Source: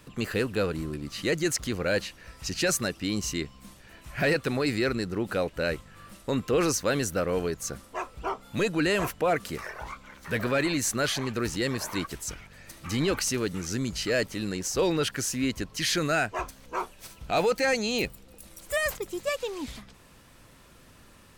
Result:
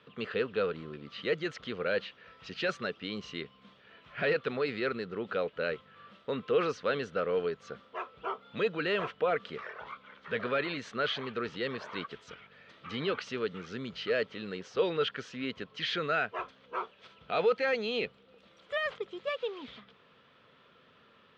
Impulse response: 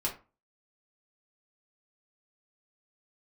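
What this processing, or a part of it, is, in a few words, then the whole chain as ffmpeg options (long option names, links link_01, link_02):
kitchen radio: -af "highpass=180,equalizer=frequency=310:width_type=q:width=4:gain=-8,equalizer=frequency=450:width_type=q:width=4:gain=7,equalizer=frequency=830:width_type=q:width=4:gain=-3,equalizer=frequency=1300:width_type=q:width=4:gain=6,equalizer=frequency=3300:width_type=q:width=4:gain=7,lowpass=frequency=3700:width=0.5412,lowpass=frequency=3700:width=1.3066,volume=-6dB"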